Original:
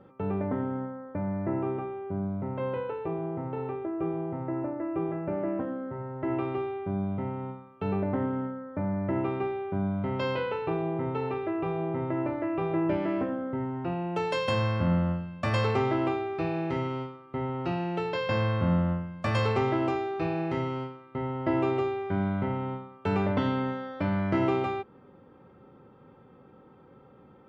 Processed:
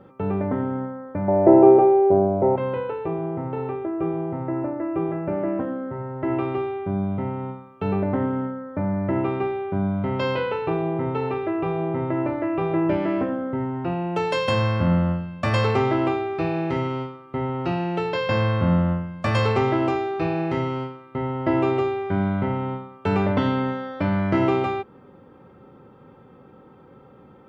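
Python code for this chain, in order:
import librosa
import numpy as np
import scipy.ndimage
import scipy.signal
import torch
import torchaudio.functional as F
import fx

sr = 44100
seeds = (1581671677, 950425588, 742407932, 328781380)

y = fx.band_shelf(x, sr, hz=540.0, db=15.5, octaves=1.7, at=(1.28, 2.56))
y = y * 10.0 ** (5.5 / 20.0)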